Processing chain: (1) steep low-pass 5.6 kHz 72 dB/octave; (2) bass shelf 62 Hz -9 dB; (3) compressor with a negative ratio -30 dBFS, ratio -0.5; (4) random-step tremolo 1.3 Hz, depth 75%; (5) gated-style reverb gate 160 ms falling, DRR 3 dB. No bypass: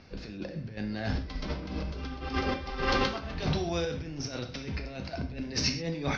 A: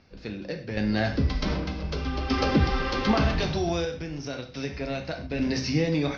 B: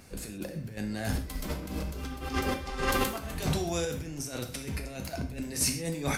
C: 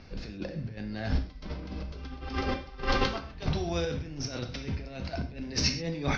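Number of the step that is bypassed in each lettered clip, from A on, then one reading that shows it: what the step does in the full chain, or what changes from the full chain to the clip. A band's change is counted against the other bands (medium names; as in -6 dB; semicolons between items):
3, crest factor change -2.5 dB; 1, 4 kHz band -2.0 dB; 2, 125 Hz band +1.5 dB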